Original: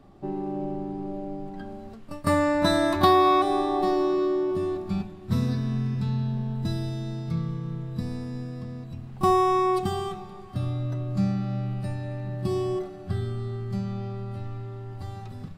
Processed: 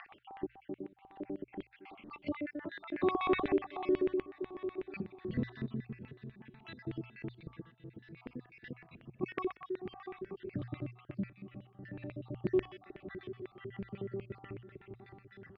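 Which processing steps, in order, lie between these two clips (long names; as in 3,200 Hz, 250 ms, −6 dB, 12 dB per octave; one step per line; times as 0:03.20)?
time-frequency cells dropped at random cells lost 59%
amplitude tremolo 0.56 Hz, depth 83%
repeating echo 694 ms, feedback 48%, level −22 dB
upward compression, threshold −36 dBFS
auto-filter band-pass square 8.1 Hz 380–2,200 Hz
low-pass filter 3,200 Hz 24 dB per octave
parametric band 680 Hz −9 dB 2.9 octaves
in parallel at +1 dB: downward compressor, threshold −51 dBFS, peak gain reduction 18 dB
on the sum: mains-hum notches 60/120 Hz
level +6.5 dB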